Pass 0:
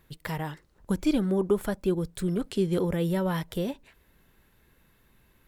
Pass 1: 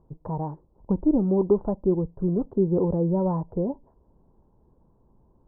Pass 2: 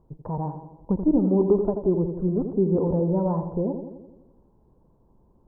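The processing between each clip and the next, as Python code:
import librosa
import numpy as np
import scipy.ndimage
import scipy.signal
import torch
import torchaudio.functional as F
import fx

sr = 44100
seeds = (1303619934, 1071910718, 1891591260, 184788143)

y1 = scipy.signal.sosfilt(scipy.signal.ellip(4, 1.0, 60, 960.0, 'lowpass', fs=sr, output='sos'), x)
y1 = y1 * 10.0 ** (4.0 / 20.0)
y2 = fx.echo_tape(y1, sr, ms=84, feedback_pct=69, wet_db=-6, lp_hz=1000.0, drive_db=4.0, wow_cents=12)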